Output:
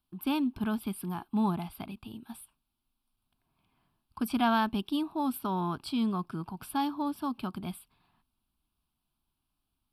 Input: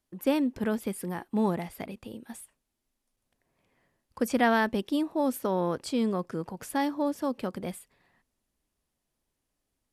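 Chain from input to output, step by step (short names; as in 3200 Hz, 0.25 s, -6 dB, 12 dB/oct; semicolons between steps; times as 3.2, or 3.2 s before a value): fixed phaser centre 1900 Hz, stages 6; gain +1.5 dB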